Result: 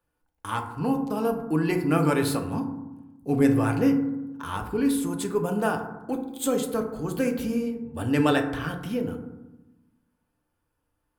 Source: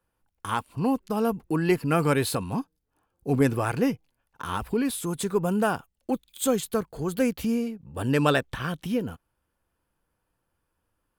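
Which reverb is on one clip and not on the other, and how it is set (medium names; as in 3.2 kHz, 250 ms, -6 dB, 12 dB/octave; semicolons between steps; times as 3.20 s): FDN reverb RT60 1 s, low-frequency decay 1.45×, high-frequency decay 0.35×, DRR 3.5 dB; trim -2.5 dB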